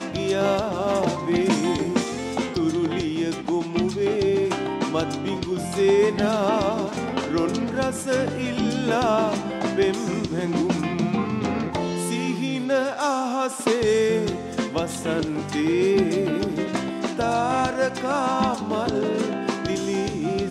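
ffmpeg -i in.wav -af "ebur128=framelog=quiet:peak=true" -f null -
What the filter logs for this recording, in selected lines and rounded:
Integrated loudness:
  I:         -23.6 LUFS
  Threshold: -33.6 LUFS
Loudness range:
  LRA:         1.6 LU
  Threshold: -43.6 LUFS
  LRA low:   -24.3 LUFS
  LRA high:  -22.8 LUFS
True peak:
  Peak:       -6.2 dBFS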